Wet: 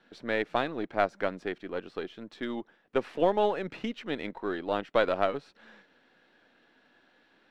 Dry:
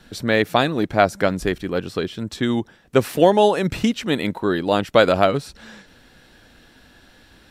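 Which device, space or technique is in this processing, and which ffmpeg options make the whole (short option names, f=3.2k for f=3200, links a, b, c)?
crystal radio: -af "highpass=280,lowpass=2.9k,aeval=exprs='if(lt(val(0),0),0.708*val(0),val(0))':c=same,volume=-9dB"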